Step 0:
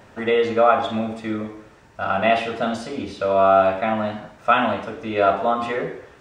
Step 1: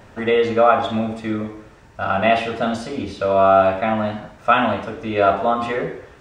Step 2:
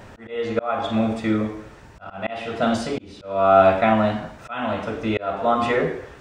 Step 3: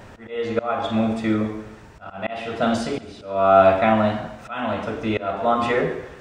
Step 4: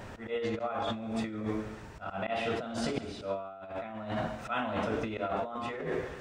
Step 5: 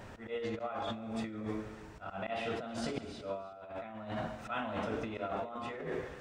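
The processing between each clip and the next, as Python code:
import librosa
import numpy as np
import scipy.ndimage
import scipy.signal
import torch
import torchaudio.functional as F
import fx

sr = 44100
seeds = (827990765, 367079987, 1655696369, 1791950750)

y1 = fx.low_shelf(x, sr, hz=92.0, db=8.5)
y1 = F.gain(torch.from_numpy(y1), 1.5).numpy()
y2 = fx.auto_swell(y1, sr, attack_ms=478.0)
y2 = F.gain(torch.from_numpy(y2), 2.5).numpy()
y3 = fx.echo_feedback(y2, sr, ms=139, feedback_pct=43, wet_db=-17.0)
y4 = fx.over_compress(y3, sr, threshold_db=-28.0, ratio=-1.0)
y4 = F.gain(torch.from_numpy(y4), -7.5).numpy()
y5 = y4 + 10.0 ** (-17.5 / 20.0) * np.pad(y4, (int(318 * sr / 1000.0), 0))[:len(y4)]
y5 = F.gain(torch.from_numpy(y5), -4.5).numpy()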